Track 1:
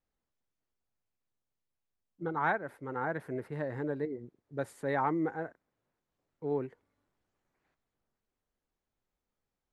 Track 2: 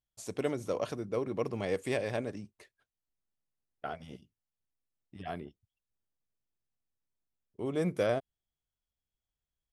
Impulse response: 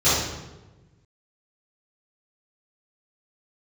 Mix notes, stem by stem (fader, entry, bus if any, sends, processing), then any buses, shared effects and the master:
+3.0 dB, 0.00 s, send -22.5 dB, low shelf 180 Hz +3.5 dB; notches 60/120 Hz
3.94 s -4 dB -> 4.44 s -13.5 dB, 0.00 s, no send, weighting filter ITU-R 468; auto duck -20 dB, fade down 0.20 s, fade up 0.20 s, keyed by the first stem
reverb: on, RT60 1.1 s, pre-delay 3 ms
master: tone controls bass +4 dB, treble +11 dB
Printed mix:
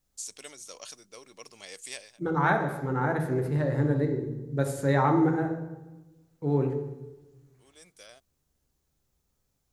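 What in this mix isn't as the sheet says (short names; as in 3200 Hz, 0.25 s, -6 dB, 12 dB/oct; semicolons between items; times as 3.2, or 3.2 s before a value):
stem 1: missing notches 60/120 Hz; stem 2 -4.0 dB -> -11.5 dB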